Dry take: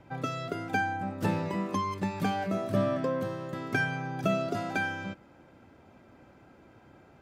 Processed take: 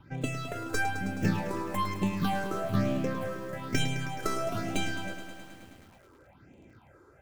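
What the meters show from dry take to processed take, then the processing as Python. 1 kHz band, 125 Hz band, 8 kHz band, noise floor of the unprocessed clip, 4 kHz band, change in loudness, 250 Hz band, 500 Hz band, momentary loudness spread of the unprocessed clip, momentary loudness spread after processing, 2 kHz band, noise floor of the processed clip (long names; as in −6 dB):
−1.5 dB, +1.5 dB, +7.5 dB, −57 dBFS, +4.5 dB, −0.5 dB, 0.0 dB, −2.5 dB, 6 LU, 10 LU, −2.5 dB, −58 dBFS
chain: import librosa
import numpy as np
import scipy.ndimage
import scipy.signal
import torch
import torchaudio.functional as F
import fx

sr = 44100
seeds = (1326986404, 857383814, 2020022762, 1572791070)

y = fx.tracing_dist(x, sr, depth_ms=0.31)
y = fx.phaser_stages(y, sr, stages=6, low_hz=180.0, high_hz=1400.0, hz=1.1, feedback_pct=30)
y = fx.echo_crushed(y, sr, ms=106, feedback_pct=80, bits=9, wet_db=-11)
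y = F.gain(torch.from_numpy(y), 2.0).numpy()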